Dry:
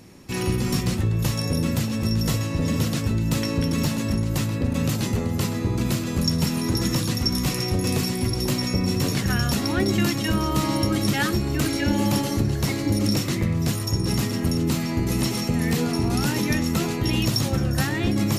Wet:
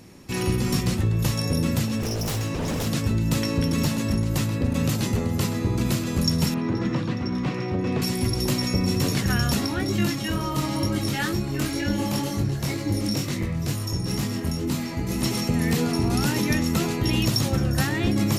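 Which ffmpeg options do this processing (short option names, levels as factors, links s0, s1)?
-filter_complex "[0:a]asettb=1/sr,asplit=3[s0][s1][s2];[s0]atrim=end=1.994[s3];[s1]atrim=start=1.99:end=2.87,asetpts=PTS-STARTPTS,afade=t=in:d=0.004:c=qsin,afade=t=out:st=0.876:d=0.004:c=qsin,aeval=exprs='0.0841*(abs(mod(val(0)/0.0841+3,4)-2)-1)':c=same[s4];[s2]atrim=start=2.866[s5];[s3][s4]acrossfade=d=0.004:c1=hsin:c2=qsin[s6];[s6][s5]acrossfade=d=0.004:c1=qsin:c2=hsin,asettb=1/sr,asplit=3[s7][s8][s9];[s7]atrim=end=6.544[s10];[s8]atrim=start=6.54:end=8.02,asetpts=PTS-STARTPTS,afade=t=in:d=0.004:c=qsin,afade=t=out:st=1.476:d=0.004:c=qsin,highpass=120,lowpass=2300[s11];[s9]atrim=start=8.016[s12];[s10][s11]acrossfade=d=0.004:c1=hsin:c2=qsin[s13];[s13][s12]acrossfade=d=0.004:c1=qsin:c2=hsin,asplit=3[s14][s15][s16];[s14]afade=t=out:st=9.65:d=0.02[s17];[s15]flanger=delay=20:depth=3:speed=2.1,afade=t=in:st=9.65:d=0.02,afade=t=out:st=15.22:d=0.02[s18];[s16]afade=t=in:st=15.22:d=0.02[s19];[s17][s18][s19]amix=inputs=3:normalize=0"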